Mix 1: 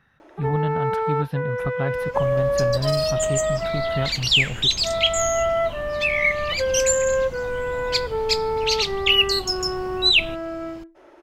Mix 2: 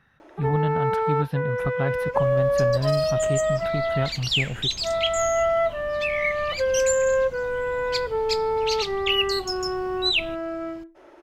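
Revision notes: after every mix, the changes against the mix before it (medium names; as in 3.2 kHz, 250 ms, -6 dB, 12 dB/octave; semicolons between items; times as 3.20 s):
second sound -6.0 dB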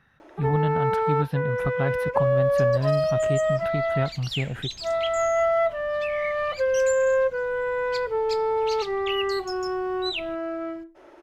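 second sound -8.5 dB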